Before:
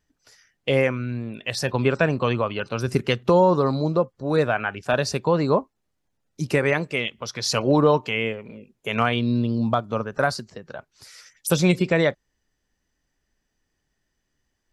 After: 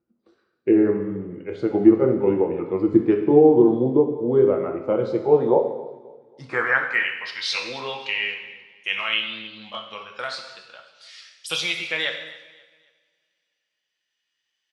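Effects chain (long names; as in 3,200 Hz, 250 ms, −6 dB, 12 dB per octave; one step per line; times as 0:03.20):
pitch glide at a constant tempo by −4 semitones ending unshifted
band-pass filter sweep 350 Hz → 3,100 Hz, 0:04.96–0:07.75
on a send: repeating echo 268 ms, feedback 37%, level −20.5 dB
on the sum: coupled-rooms reverb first 0.95 s, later 2.9 s, from −28 dB, DRR 2.5 dB
level +8 dB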